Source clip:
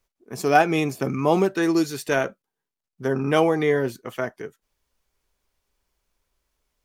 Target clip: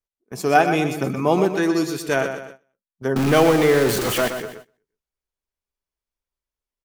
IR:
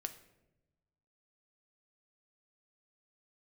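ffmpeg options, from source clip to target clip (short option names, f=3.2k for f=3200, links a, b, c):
-filter_complex "[0:a]asettb=1/sr,asplit=3[a][b][c];[a]atrim=end=3.164[d];[b]atrim=start=3.16:end=4.28,asetpts=PTS-STARTPTS,afade=t=in:d=0.004:c=qsin,afade=t=out:st=1.116:d=0.004:c=qsin,aeval=exprs='val(0)+0.5*0.1*sgn(val(0))':c=same[e];[c]atrim=start=4.276[f];[d][e]acrossfade=d=0.004:c1=hsin:c2=qsin[g];[g][f]acrossfade=d=0.004:c1=qsin:c2=hsin,asplit=2[h][i];[i]aecho=0:1:123|246|369|492:0.376|0.15|0.0601|0.0241[j];[h][j]amix=inputs=2:normalize=0,agate=range=-18dB:threshold=-40dB:ratio=16:detection=peak,volume=1dB"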